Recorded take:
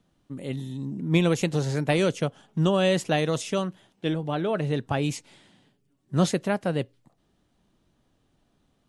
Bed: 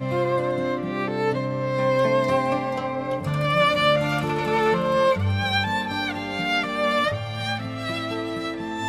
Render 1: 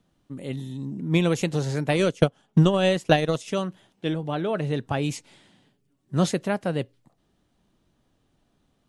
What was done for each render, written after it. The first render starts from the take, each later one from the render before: 1.96–3.48 transient shaper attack +11 dB, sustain -8 dB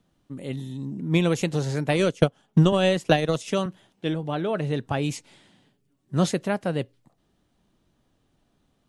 2.72–3.66 three-band squash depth 40%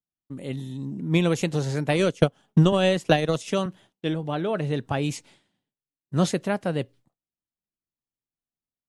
expander -46 dBFS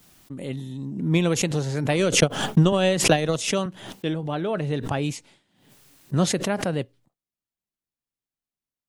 backwards sustainer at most 73 dB/s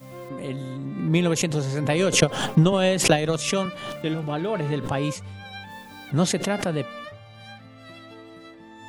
add bed -16 dB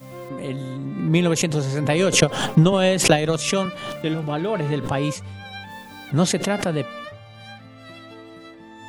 gain +2.5 dB; limiter -1 dBFS, peak gain reduction 1 dB

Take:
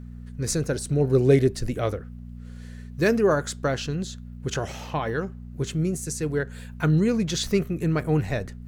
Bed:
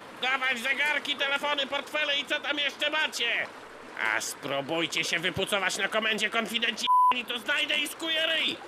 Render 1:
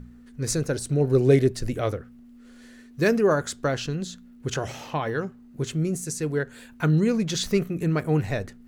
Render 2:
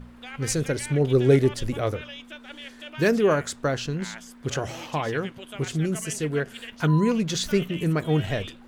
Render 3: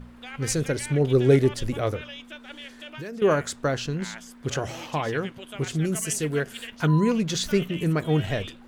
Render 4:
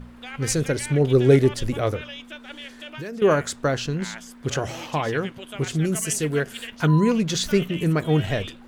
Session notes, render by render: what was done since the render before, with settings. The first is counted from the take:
de-hum 60 Hz, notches 3
add bed -13.5 dB
2.51–3.22 compressor, threshold -34 dBFS; 5.84–6.66 high shelf 7900 Hz -> 4600 Hz +8 dB
gain +2.5 dB

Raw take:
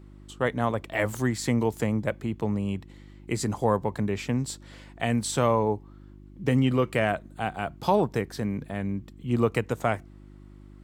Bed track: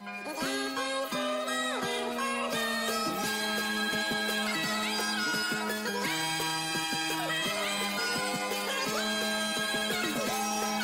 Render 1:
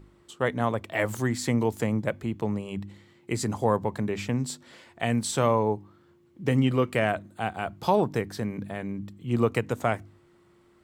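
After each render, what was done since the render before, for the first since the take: de-hum 50 Hz, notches 6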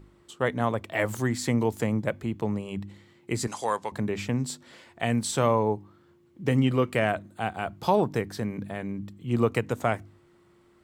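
3.47–3.92 weighting filter ITU-R 468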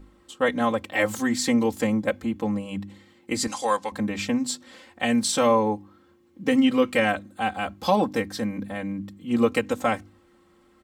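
dynamic EQ 4500 Hz, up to +5 dB, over -44 dBFS, Q 0.77; comb 3.8 ms, depth 99%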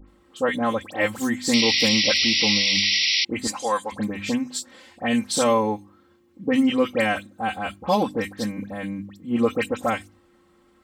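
dispersion highs, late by 81 ms, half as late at 2300 Hz; 1.53–3.25 painted sound noise 1900–5800 Hz -21 dBFS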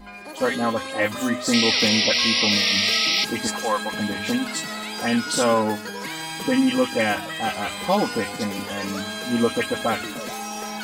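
add bed track -0.5 dB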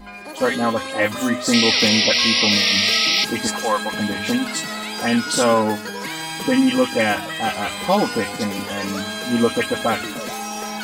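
gain +3 dB

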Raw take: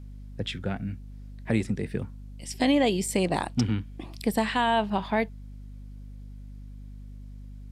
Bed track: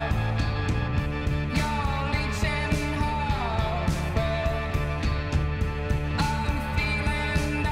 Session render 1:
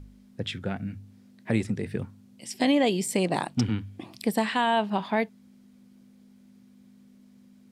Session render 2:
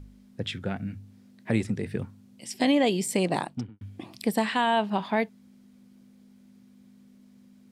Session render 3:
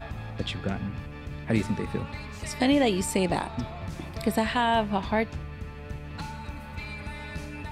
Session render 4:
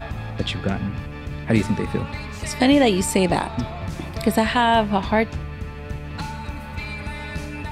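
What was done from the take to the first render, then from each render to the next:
de-hum 50 Hz, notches 3
3.33–3.81 studio fade out
add bed track -11.5 dB
gain +6.5 dB

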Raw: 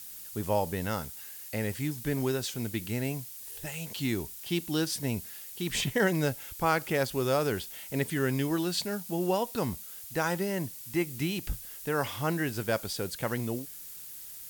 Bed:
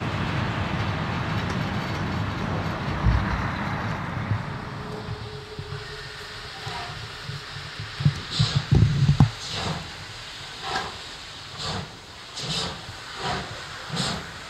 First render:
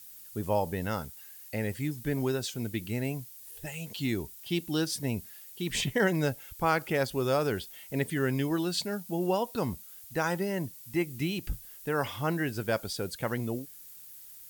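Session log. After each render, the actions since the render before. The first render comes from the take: denoiser 7 dB, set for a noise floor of -45 dBFS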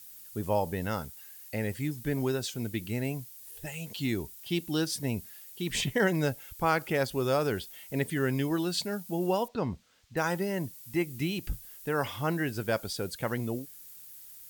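9.48–10.17 air absorption 150 m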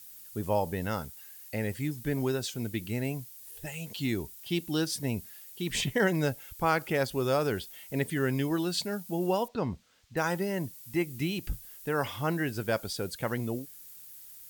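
nothing audible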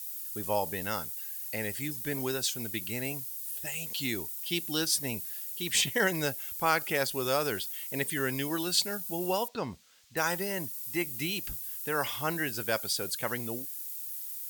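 tilt +2.5 dB/oct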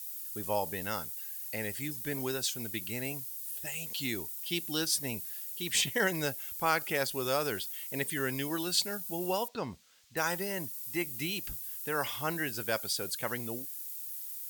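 gain -2 dB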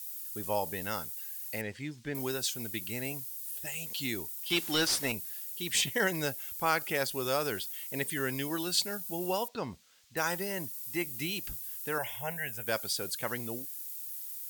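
1.61–2.15 air absorption 130 m; 4.5–5.12 overdrive pedal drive 19 dB, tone 3400 Hz, clips at -16 dBFS; 11.98–12.67 fixed phaser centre 1200 Hz, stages 6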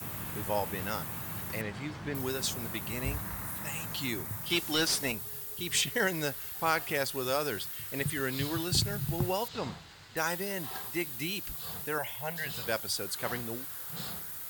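add bed -15.5 dB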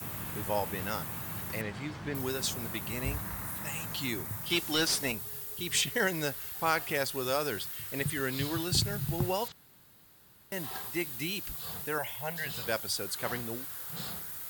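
9.52–10.52 room tone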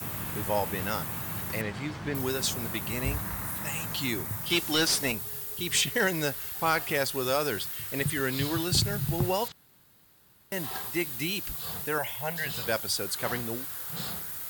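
sample leveller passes 1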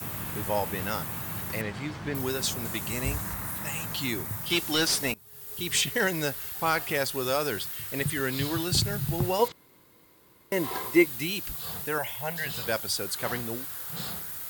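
2.65–3.34 bell 7200 Hz +6 dB 0.87 oct; 5.14–5.58 fade in quadratic, from -20 dB; 9.39–11.06 small resonant body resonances 340/480/1000/2100 Hz, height 11 dB, ringing for 25 ms

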